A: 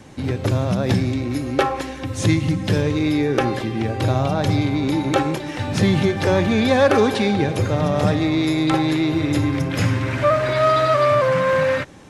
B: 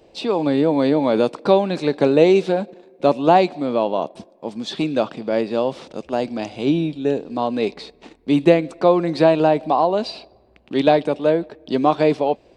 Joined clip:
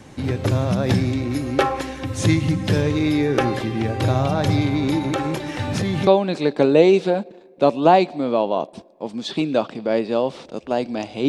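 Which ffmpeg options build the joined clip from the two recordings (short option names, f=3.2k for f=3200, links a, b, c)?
-filter_complex "[0:a]asettb=1/sr,asplit=3[a][b][c];[a]atrim=end=4.984[d];[b]atrim=start=4.98:end=6.07,asetpts=PTS-STARTPTS,afade=t=in:d=0.004:c=qsin,afade=t=out:st=1.086:d=0.004:c=qsin,acompressor=threshold=-18dB:ratio=6:attack=3.2:release=140:knee=1:detection=peak[e];[c]atrim=start=6.066[f];[d][e]acrossfade=d=0.004:c1=hsin:c2=qsin[g];[g][f]acrossfade=d=0.004:c1=qsin:c2=hsin,apad=whole_dur=11.28,atrim=end=11.28,atrim=end=6.072[h];[1:a]atrim=start=1.488:end=6.7[i];[h][i]acrossfade=d=0.004:c1=hsin:c2=hsin"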